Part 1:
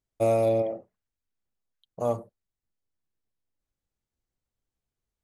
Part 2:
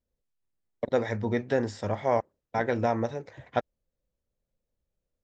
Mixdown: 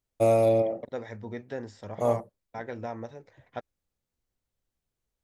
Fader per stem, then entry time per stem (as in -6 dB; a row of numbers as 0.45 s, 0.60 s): +1.5 dB, -10.0 dB; 0.00 s, 0.00 s